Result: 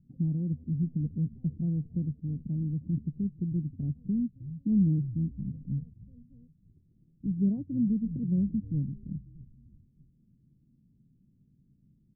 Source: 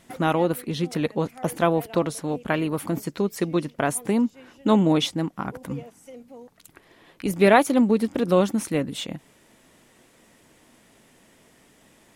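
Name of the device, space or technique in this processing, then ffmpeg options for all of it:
the neighbour's flat through the wall: -filter_complex "[0:a]asplit=5[link_01][link_02][link_03][link_04][link_05];[link_02]adelay=312,afreqshift=-78,volume=-20dB[link_06];[link_03]adelay=624,afreqshift=-156,volume=-26dB[link_07];[link_04]adelay=936,afreqshift=-234,volume=-32dB[link_08];[link_05]adelay=1248,afreqshift=-312,volume=-38.1dB[link_09];[link_01][link_06][link_07][link_08][link_09]amix=inputs=5:normalize=0,lowpass=frequency=200:width=0.5412,lowpass=frequency=200:width=1.3066,equalizer=frequency=140:width_type=o:width=0.56:gain=5,volume=-1.5dB"

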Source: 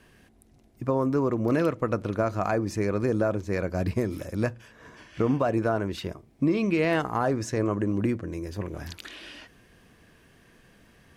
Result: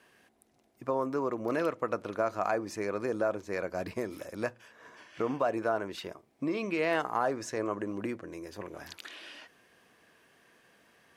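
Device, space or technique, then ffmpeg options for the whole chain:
filter by subtraction: -filter_complex "[0:a]asplit=2[link_01][link_02];[link_02]lowpass=740,volume=-1[link_03];[link_01][link_03]amix=inputs=2:normalize=0,volume=-4dB"

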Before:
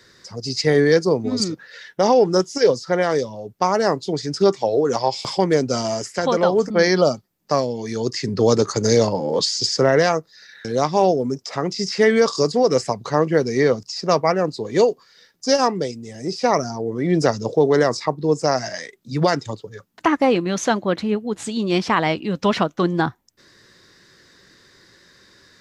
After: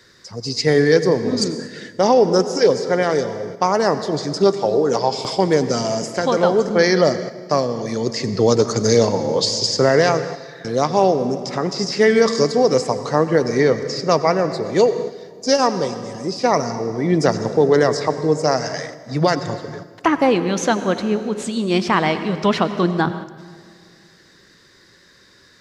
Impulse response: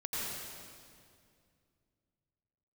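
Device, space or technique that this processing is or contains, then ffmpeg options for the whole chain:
keyed gated reverb: -filter_complex "[0:a]asplit=3[link_01][link_02][link_03];[1:a]atrim=start_sample=2205[link_04];[link_02][link_04]afir=irnorm=-1:irlink=0[link_05];[link_03]apad=whole_len=1129040[link_06];[link_05][link_06]sidechaingate=range=-6dB:threshold=-40dB:ratio=16:detection=peak,volume=-13dB[link_07];[link_01][link_07]amix=inputs=2:normalize=0"

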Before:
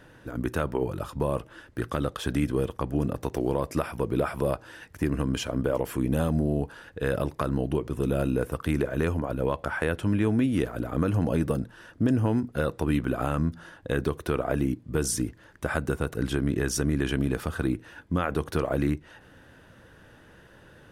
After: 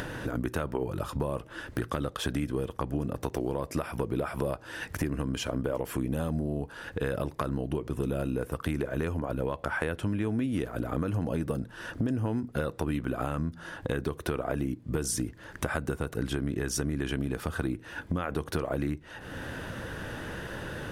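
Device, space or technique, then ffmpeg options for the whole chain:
upward and downward compression: -af "acompressor=mode=upward:threshold=-27dB:ratio=2.5,acompressor=threshold=-29dB:ratio=4,volume=2dB"

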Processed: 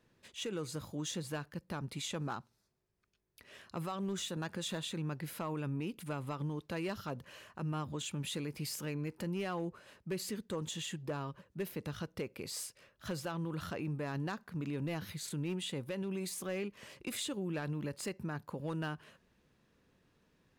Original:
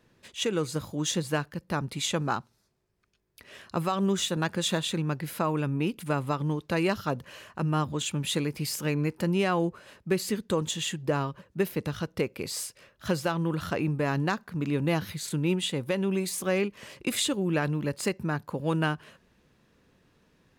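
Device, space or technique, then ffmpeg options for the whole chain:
clipper into limiter: -af "asoftclip=type=hard:threshold=-19.5dB,alimiter=limit=-24dB:level=0:latency=1:release=51,volume=-7dB"

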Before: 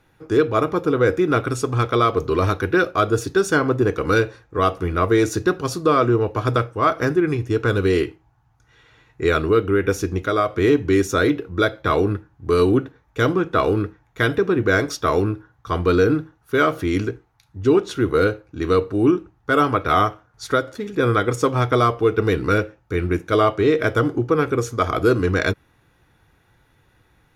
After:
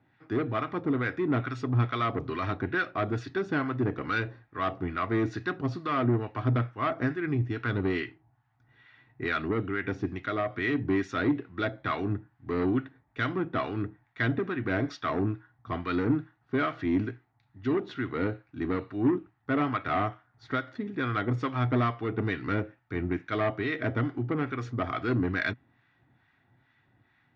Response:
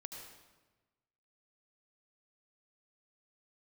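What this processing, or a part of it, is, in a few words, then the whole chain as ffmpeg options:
guitar amplifier with harmonic tremolo: -filter_complex "[0:a]equalizer=frequency=700:width=4:gain=5,acrossover=split=930[link_01][link_02];[link_01]aeval=exprs='val(0)*(1-0.7/2+0.7/2*cos(2*PI*2.3*n/s))':channel_layout=same[link_03];[link_02]aeval=exprs='val(0)*(1-0.7/2-0.7/2*cos(2*PI*2.3*n/s))':channel_layout=same[link_04];[link_03][link_04]amix=inputs=2:normalize=0,asoftclip=type=tanh:threshold=-15dB,highpass=100,equalizer=frequency=120:width_type=q:width=4:gain=7,equalizer=frequency=250:width_type=q:width=4:gain=9,equalizer=frequency=480:width_type=q:width=4:gain=-9,equalizer=frequency=1900:width_type=q:width=4:gain=8,lowpass=frequency=4200:width=0.5412,lowpass=frequency=4200:width=1.3066,volume=-6dB"

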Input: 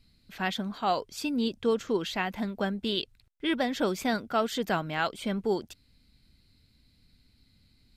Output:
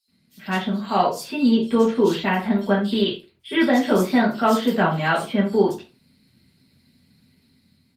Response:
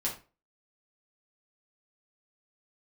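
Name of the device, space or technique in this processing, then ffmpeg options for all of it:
far-field microphone of a smart speaker: -filter_complex "[0:a]acrossover=split=4000[link_01][link_02];[link_01]adelay=80[link_03];[link_03][link_02]amix=inputs=2:normalize=0[link_04];[1:a]atrim=start_sample=2205[link_05];[link_04][link_05]afir=irnorm=-1:irlink=0,highpass=frequency=98:width=0.5412,highpass=frequency=98:width=1.3066,dynaudnorm=framelen=190:gausssize=7:maxgain=5dB" -ar 48000 -c:a libopus -b:a 32k

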